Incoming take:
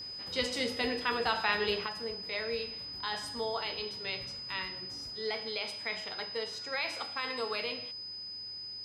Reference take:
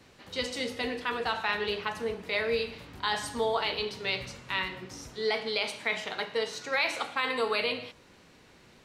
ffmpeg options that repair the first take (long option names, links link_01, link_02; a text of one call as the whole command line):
ffmpeg -i in.wav -af "bandreject=frequency=101.8:width_type=h:width=4,bandreject=frequency=203.6:width_type=h:width=4,bandreject=frequency=305.4:width_type=h:width=4,bandreject=frequency=407.2:width_type=h:width=4,bandreject=frequency=5000:width=30,asetnsamples=nb_out_samples=441:pad=0,asendcmd='1.86 volume volume 7dB',volume=0dB" out.wav